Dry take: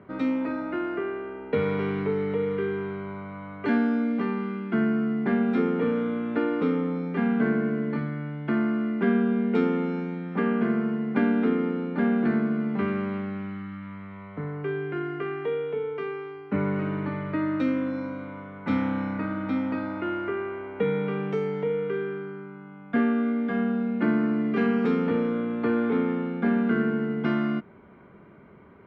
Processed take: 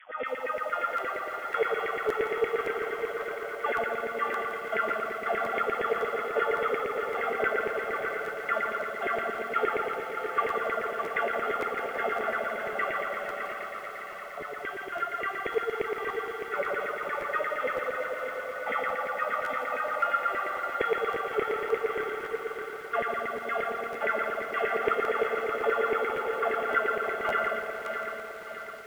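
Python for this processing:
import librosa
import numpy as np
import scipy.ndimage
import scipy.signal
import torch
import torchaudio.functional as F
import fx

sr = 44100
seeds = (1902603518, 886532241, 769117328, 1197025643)

y = fx.cvsd(x, sr, bps=32000)
y = scipy.signal.sosfilt(scipy.signal.butter(2, 48.0, 'highpass', fs=sr, output='sos'), y)
y = fx.tilt_shelf(y, sr, db=-3.5, hz=770.0)
y = fx.hum_notches(y, sr, base_hz=60, count=9)
y = y + 0.92 * np.pad(y, (int(1.5 * sr / 1000.0), 0))[:len(y)]
y = fx.quant_dither(y, sr, seeds[0], bits=8, dither='none')
y = fx.filter_lfo_highpass(y, sr, shape='saw_down', hz=8.6, low_hz=380.0, high_hz=2200.0, q=7.3)
y = fx.brickwall_lowpass(y, sr, high_hz=3500.0)
y = fx.echo_feedback(y, sr, ms=610, feedback_pct=50, wet_db=-7.5)
y = fx.buffer_crackle(y, sr, first_s=0.96, period_s=0.56, block=512, kind='repeat')
y = fx.echo_crushed(y, sr, ms=167, feedback_pct=80, bits=7, wet_db=-10.0)
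y = F.gain(torch.from_numpy(y), -8.0).numpy()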